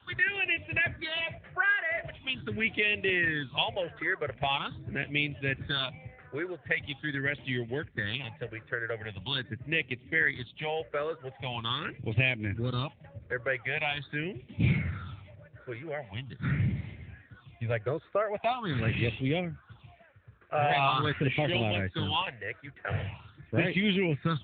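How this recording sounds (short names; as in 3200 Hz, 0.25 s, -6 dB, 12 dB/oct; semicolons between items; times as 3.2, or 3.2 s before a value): phasing stages 6, 0.43 Hz, lowest notch 220–1300 Hz; AMR-NB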